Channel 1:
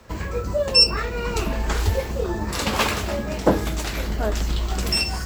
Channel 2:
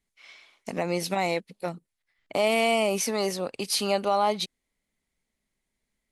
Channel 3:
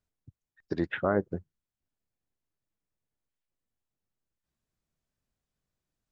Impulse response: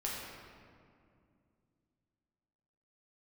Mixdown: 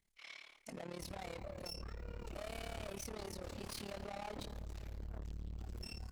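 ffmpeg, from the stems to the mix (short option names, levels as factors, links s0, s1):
-filter_complex "[0:a]lowshelf=f=350:g=11.5,adelay=900,volume=0.188,asplit=2[s0][s1];[s1]volume=0.2[s2];[1:a]volume=1.12,asplit=2[s3][s4];[s4]volume=0.158[s5];[3:a]atrim=start_sample=2205[s6];[s2][s5]amix=inputs=2:normalize=0[s7];[s7][s6]afir=irnorm=-1:irlink=0[s8];[s0][s3][s8]amix=inputs=3:normalize=0,aeval=exprs='(tanh(28.2*val(0)+0.25)-tanh(0.25))/28.2':c=same,tremolo=f=36:d=0.889,alimiter=level_in=5.31:limit=0.0631:level=0:latency=1:release=358,volume=0.188"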